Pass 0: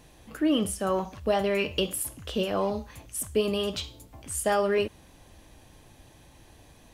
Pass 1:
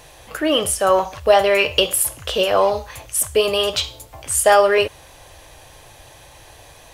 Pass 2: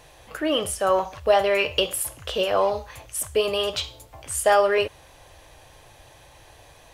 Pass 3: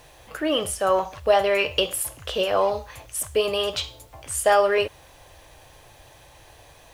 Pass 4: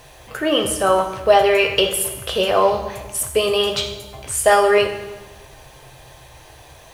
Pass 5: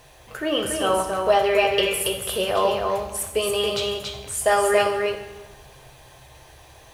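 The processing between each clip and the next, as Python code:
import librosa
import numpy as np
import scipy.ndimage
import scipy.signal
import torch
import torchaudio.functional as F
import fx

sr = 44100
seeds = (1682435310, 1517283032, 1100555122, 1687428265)

y1 = fx.curve_eq(x, sr, hz=(140.0, 210.0, 530.0), db=(0, -12, 7))
y1 = y1 * librosa.db_to_amplitude(6.0)
y2 = fx.high_shelf(y1, sr, hz=4900.0, db=-4.5)
y2 = y2 * librosa.db_to_amplitude(-5.0)
y3 = fx.quant_dither(y2, sr, seeds[0], bits=10, dither='none')
y4 = fx.rev_fdn(y3, sr, rt60_s=1.2, lf_ratio=1.4, hf_ratio=0.85, size_ms=45.0, drr_db=4.5)
y4 = y4 * librosa.db_to_amplitude(4.5)
y5 = y4 + 10.0 ** (-4.0 / 20.0) * np.pad(y4, (int(280 * sr / 1000.0), 0))[:len(y4)]
y5 = y5 * librosa.db_to_amplitude(-5.5)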